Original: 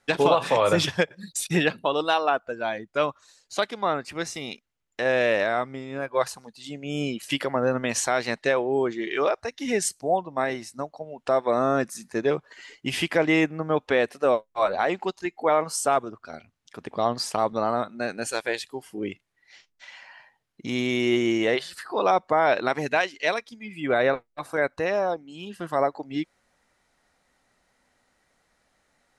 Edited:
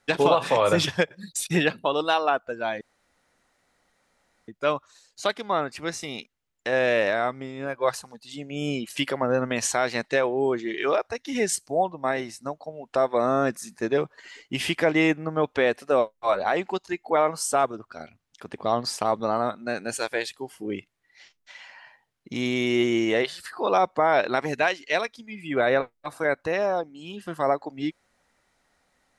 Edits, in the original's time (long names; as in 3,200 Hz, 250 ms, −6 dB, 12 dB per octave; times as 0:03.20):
0:02.81: splice in room tone 1.67 s